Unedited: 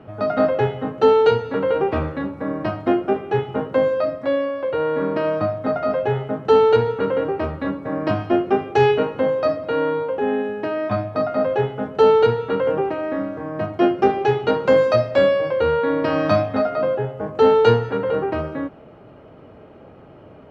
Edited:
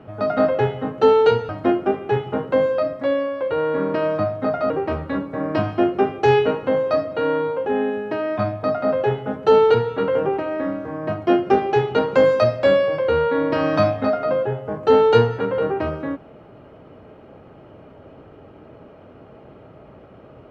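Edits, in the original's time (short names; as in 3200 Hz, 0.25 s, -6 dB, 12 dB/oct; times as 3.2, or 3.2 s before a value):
1.49–2.71 cut
5.92–7.22 cut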